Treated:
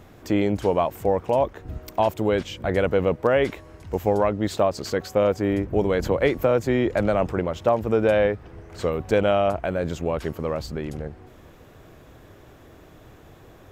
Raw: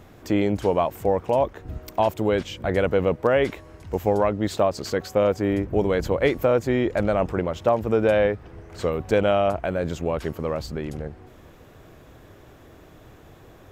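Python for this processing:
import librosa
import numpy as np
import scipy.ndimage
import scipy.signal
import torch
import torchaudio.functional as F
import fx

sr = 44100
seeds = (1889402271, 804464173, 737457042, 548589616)

y = fx.band_squash(x, sr, depth_pct=40, at=(6.02, 7.31))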